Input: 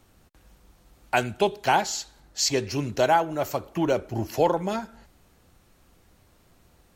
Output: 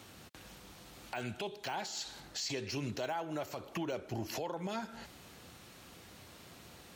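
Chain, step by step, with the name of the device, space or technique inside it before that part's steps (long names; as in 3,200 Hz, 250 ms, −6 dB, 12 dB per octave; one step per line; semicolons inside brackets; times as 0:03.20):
broadcast voice chain (high-pass filter 100 Hz 12 dB per octave; de-essing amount 80%; downward compressor 5 to 1, threshold −39 dBFS, peak gain reduction 20.5 dB; parametric band 3,500 Hz +6 dB 1.9 octaves; brickwall limiter −34.5 dBFS, peak gain reduction 11.5 dB)
level +5.5 dB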